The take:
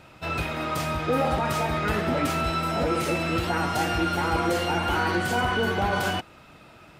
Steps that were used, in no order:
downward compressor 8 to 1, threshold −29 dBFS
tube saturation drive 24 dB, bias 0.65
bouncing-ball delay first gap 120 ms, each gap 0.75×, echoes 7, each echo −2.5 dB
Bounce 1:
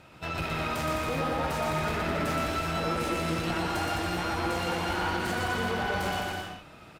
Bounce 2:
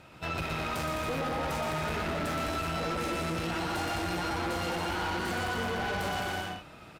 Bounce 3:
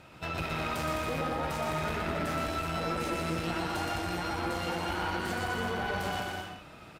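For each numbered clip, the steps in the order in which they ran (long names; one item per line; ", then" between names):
tube saturation, then downward compressor, then bouncing-ball delay
bouncing-ball delay, then tube saturation, then downward compressor
downward compressor, then bouncing-ball delay, then tube saturation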